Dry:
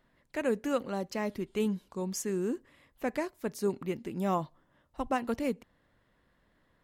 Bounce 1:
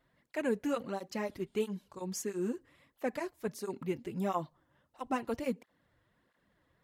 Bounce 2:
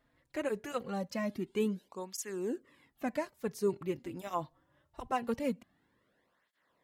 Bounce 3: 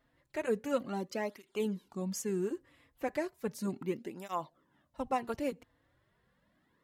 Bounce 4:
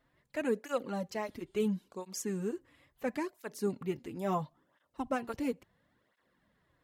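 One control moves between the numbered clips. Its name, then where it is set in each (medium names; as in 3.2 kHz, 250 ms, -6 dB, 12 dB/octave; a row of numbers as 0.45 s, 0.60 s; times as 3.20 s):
cancelling through-zero flanger, nulls at: 1.5 Hz, 0.23 Hz, 0.35 Hz, 0.73 Hz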